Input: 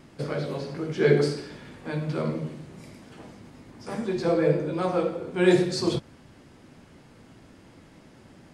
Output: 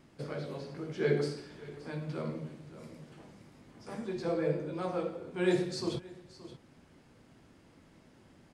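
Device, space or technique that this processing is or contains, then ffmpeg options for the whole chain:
ducked delay: -filter_complex "[0:a]asplit=3[link_01][link_02][link_03];[link_02]adelay=574,volume=-7.5dB[link_04];[link_03]apad=whole_len=401923[link_05];[link_04][link_05]sidechaincompress=threshold=-40dB:ratio=4:attack=16:release=664[link_06];[link_01][link_06]amix=inputs=2:normalize=0,volume=-9dB"

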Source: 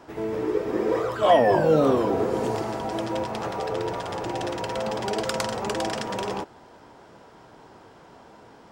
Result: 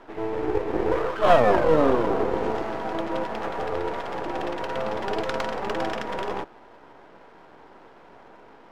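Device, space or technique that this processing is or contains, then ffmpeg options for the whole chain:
crystal radio: -af "highpass=240,lowpass=2800,aeval=exprs='if(lt(val(0),0),0.251*val(0),val(0))':channel_layout=same,volume=4dB"

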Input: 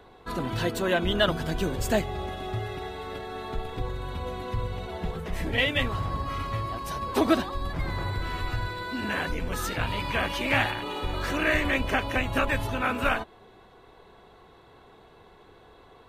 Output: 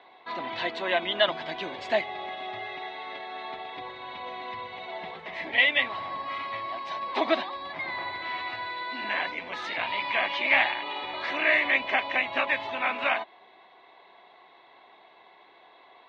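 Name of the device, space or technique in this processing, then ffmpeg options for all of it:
phone earpiece: -af "highpass=460,equalizer=frequency=460:width_type=q:width=4:gain=-9,equalizer=frequency=670:width_type=q:width=4:gain=4,equalizer=frequency=970:width_type=q:width=4:gain=3,equalizer=frequency=1400:width_type=q:width=4:gain=-7,equalizer=frequency=2100:width_type=q:width=4:gain=9,equalizer=frequency=3800:width_type=q:width=4:gain=4,lowpass=frequency=4100:width=0.5412,lowpass=frequency=4100:width=1.3066"

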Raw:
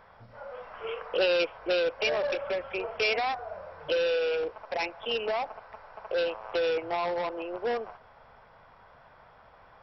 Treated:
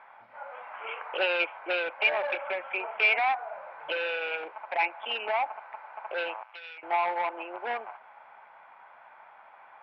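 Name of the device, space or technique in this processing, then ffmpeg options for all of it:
phone earpiece: -filter_complex "[0:a]asettb=1/sr,asplit=3[link_01][link_02][link_03];[link_01]atrim=end=6.434[link_04];[link_02]atrim=start=6.43:end=6.83,asetpts=PTS-STARTPTS,afade=type=in:duration=0.004:curve=qsin,afade=type=out:start_time=0.396:duration=0.004:curve=qsin,aderivative[link_05];[link_03]atrim=start=6.826[link_06];[link_04][link_05]acrossfade=duration=0.004:curve1=hsin:curve2=qsin[link_07];[link_07][link_06]acrossfade=duration=0.004:curve1=qsin:curve2=hsin,highpass=440,equalizer=frequency=470:width_type=q:width=4:gain=-9,equalizer=frequency=860:width_type=q:width=4:gain=8,equalizer=frequency=1500:width_type=q:width=4:gain=3,equalizer=frequency=2300:width_type=q:width=4:gain=8,lowpass=frequency=3100:width=0.5412,lowpass=frequency=3100:width=1.3066"

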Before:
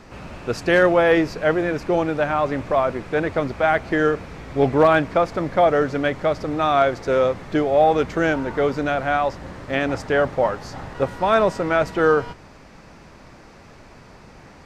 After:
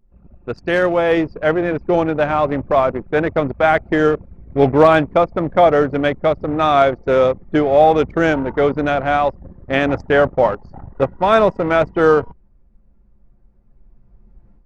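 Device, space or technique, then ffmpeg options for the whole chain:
voice memo with heavy noise removal: -af "anlmdn=158,dynaudnorm=framelen=910:gausssize=3:maxgain=14dB,adynamicequalizer=threshold=0.0282:dfrequency=1600:dqfactor=2.4:tfrequency=1600:tqfactor=2.4:attack=5:release=100:ratio=0.375:range=3.5:mode=cutabove:tftype=bell,volume=-1dB"

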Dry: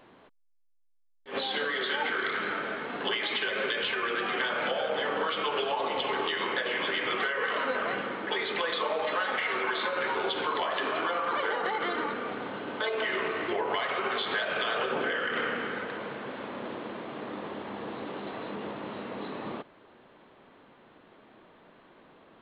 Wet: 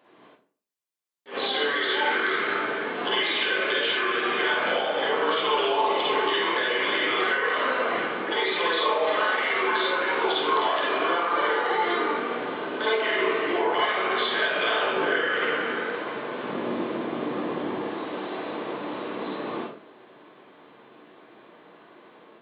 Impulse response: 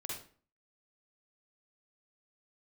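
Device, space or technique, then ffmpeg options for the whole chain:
far laptop microphone: -filter_complex "[0:a]asettb=1/sr,asplit=3[link_01][link_02][link_03];[link_01]atrim=end=16.434[link_04];[link_02]atrim=start=16.43:end=17.81,asetpts=PTS-STARTPTS,afade=type=in:duration=0.004:curve=qsin,afade=type=out:start_time=1.376:duration=0.004:curve=qsin,lowshelf=frequency=310:gain=10[link_05];[link_03]atrim=start=17.806[link_06];[link_04][link_05]acrossfade=duration=0.004:curve1=hsin:curve2=qsin[link_07];[link_07][link_06]acrossfade=duration=0.004:curve1=qsin:curve2=hsin[link_08];[1:a]atrim=start_sample=2205[link_09];[link_08][link_09]afir=irnorm=-1:irlink=0,highpass=200,dynaudnorm=framelen=130:gausssize=3:maxgain=6dB"

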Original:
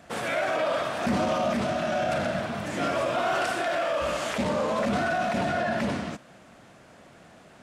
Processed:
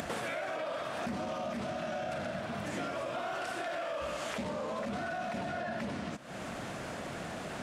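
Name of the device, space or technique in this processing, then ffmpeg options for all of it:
upward and downward compression: -af "acompressor=mode=upward:threshold=-35dB:ratio=2.5,acompressor=threshold=-39dB:ratio=8,volume=4.5dB"

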